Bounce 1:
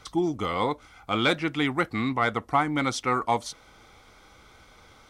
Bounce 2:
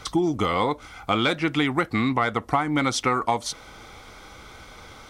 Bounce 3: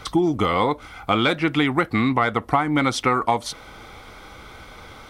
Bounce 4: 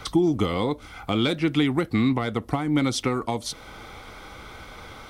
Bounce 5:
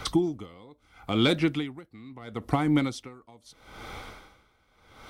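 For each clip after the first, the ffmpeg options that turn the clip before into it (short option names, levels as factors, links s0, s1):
-af "acompressor=threshold=0.0398:ratio=6,volume=2.82"
-af "equalizer=f=6500:t=o:w=1:g=-6,volume=1.41"
-filter_complex "[0:a]acrossover=split=500|3000[s0][s1][s2];[s1]acompressor=threshold=0.0126:ratio=2.5[s3];[s0][s3][s2]amix=inputs=3:normalize=0"
-af "aeval=exprs='val(0)*pow(10,-27*(0.5-0.5*cos(2*PI*0.76*n/s))/20)':c=same,volume=1.19"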